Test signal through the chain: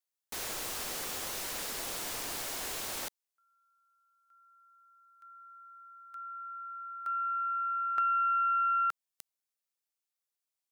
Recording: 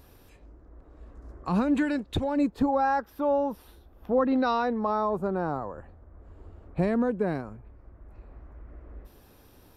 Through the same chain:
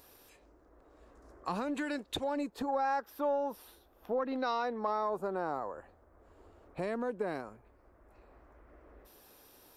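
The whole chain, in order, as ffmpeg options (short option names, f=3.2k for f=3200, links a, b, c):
-af "aeval=exprs='0.211*(cos(1*acos(clip(val(0)/0.211,-1,1)))-cos(1*PI/2))+0.0168*(cos(2*acos(clip(val(0)/0.211,-1,1)))-cos(2*PI/2))':c=same,acompressor=threshold=-25dB:ratio=6,bass=f=250:g=-14,treble=f=4k:g=5,volume=-2dB"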